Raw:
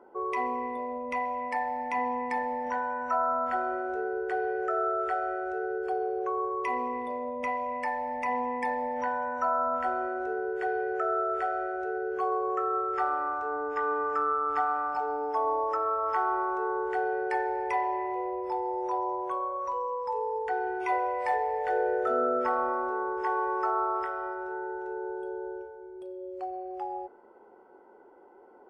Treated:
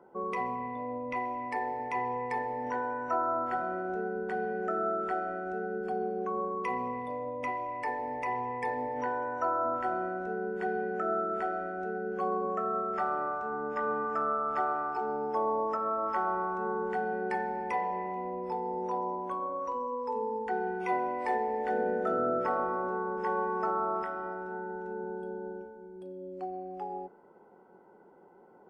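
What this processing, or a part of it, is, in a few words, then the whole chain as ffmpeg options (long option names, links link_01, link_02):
octave pedal: -filter_complex "[0:a]asettb=1/sr,asplit=3[link_01][link_02][link_03];[link_01]atrim=end=0.554[link_04];[link_02]atrim=start=0.55:end=1.16,asetpts=PTS-STARTPTS,afade=type=in:duration=0.004:curve=qsin,afade=type=out:start_time=0.606:duration=0.004:curve=qsin,lowpass=5100[link_05];[link_03]atrim=start=1.156[link_06];[link_04][link_05]acrossfade=duration=0.004:curve1=hsin:curve2=qsin[link_07];[link_07][link_06]acrossfade=duration=0.004:curve1=qsin:curve2=hsin,asplit=2[link_08][link_09];[link_09]asetrate=22050,aresample=44100,atempo=2,volume=-9dB[link_10];[link_08][link_10]amix=inputs=2:normalize=0,volume=-3dB"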